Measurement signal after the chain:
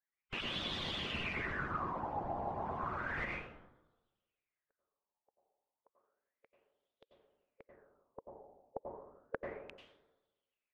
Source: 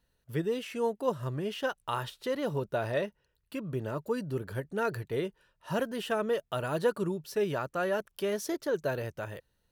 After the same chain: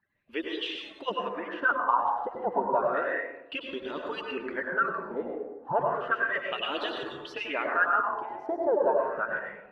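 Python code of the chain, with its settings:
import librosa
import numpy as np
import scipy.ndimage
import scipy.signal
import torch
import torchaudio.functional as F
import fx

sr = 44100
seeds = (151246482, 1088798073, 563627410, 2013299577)

y = fx.hpss_only(x, sr, part='percussive')
y = fx.rev_plate(y, sr, seeds[0], rt60_s=1.1, hf_ratio=0.4, predelay_ms=80, drr_db=0.0)
y = fx.filter_lfo_lowpass(y, sr, shape='sine', hz=0.32, low_hz=790.0, high_hz=3500.0, q=7.1)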